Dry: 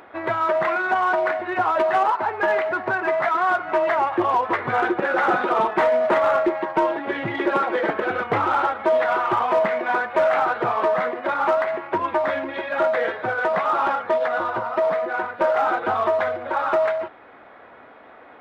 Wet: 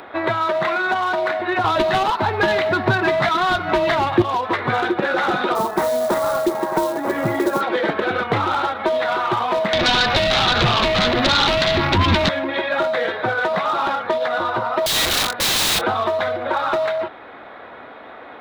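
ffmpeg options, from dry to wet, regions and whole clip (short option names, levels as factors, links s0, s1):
-filter_complex "[0:a]asettb=1/sr,asplit=3[s0][s1][s2];[s0]atrim=end=1.644[s3];[s1]atrim=start=1.64:end=4.22,asetpts=PTS-STARTPTS,afade=t=in:d=0.004:c=qsin,afade=t=out:st=2.576:d=0.004:c=qsin,lowshelf=f=210:g=9.5,acontrast=46[s4];[s2]atrim=start=4.216[s5];[s3][s4]acrossfade=d=0.004:c1=hsin:c2=qsin[s6];[s6][s5]acrossfade=d=0.004:c1=qsin:c2=hsin,asettb=1/sr,asplit=3[s7][s8][s9];[s7]atrim=end=5.554[s10];[s8]atrim=start=5.55:end=7.61,asetpts=PTS-STARTPTS,afade=t=in:d=0.004:c=qsin,afade=t=out:st=2.056:d=0.004:c=qsin,lowpass=1500,aecho=1:1:944:0.2,atrim=end_sample=90846,acrusher=bits=6:mode=log:mix=0:aa=0.000001[s11];[s9]atrim=start=7.606[s12];[s10][s11]acrossfade=d=0.004:c1=hsin:c2=qsin[s13];[s13][s12]acrossfade=d=0.004:c1=qsin:c2=hsin,asettb=1/sr,asplit=3[s14][s15][s16];[s14]atrim=end=9.734[s17];[s15]atrim=start=9.73:end=12.29,asetpts=PTS-STARTPTS,afade=t=in:d=0.004:c=qsin,afade=t=out:st=2.556:d=0.004:c=qsin,asubboost=boost=10:cutoff=180,acompressor=threshold=0.0501:ratio=10:attack=3.2:release=140:knee=1:detection=peak,aeval=exprs='0.178*sin(PI/2*4.47*val(0)/0.178)':c=same[s18];[s16]atrim=start=12.286[s19];[s17][s18]acrossfade=d=0.004:c1=hsin:c2=qsin[s20];[s20][s19]acrossfade=d=0.004:c1=qsin:c2=hsin,asettb=1/sr,asplit=3[s21][s22][s23];[s21]atrim=end=14.864[s24];[s22]atrim=start=14.86:end=15.83,asetpts=PTS-STARTPTS,afade=t=in:d=0.004:c=qsin,afade=t=out:st=0.966:d=0.004:c=qsin,aeval=exprs='(mod(14.1*val(0)+1,2)-1)/14.1':c=same,asplit=2[s25][s26];[s26]adelay=25,volume=0.251[s27];[s25][s27]amix=inputs=2:normalize=0,atrim=end_sample=42777[s28];[s23]atrim=start=15.826[s29];[s24][s28]acrossfade=d=0.004:c1=hsin:c2=qsin[s30];[s30][s29]acrossfade=d=0.004:c1=qsin:c2=hsin,equalizer=f=3800:t=o:w=0.34:g=8.5,acrossover=split=240|3000[s31][s32][s33];[s32]acompressor=threshold=0.0501:ratio=6[s34];[s31][s34][s33]amix=inputs=3:normalize=0,volume=2.37"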